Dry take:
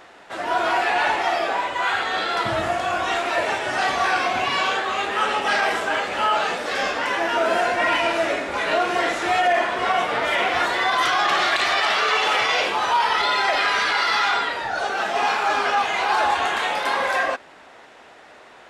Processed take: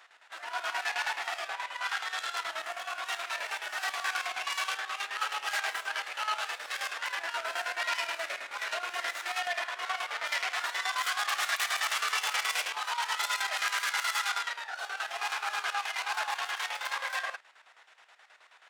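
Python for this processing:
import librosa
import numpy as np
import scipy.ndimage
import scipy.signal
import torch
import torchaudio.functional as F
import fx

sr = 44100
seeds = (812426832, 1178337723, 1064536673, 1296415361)

y = fx.tracing_dist(x, sr, depth_ms=0.15)
y = scipy.signal.sosfilt(scipy.signal.butter(2, 1200.0, 'highpass', fs=sr, output='sos'), y)
y = fx.chopper(y, sr, hz=9.4, depth_pct=65, duty_pct=60)
y = F.gain(torch.from_numpy(y), -7.0).numpy()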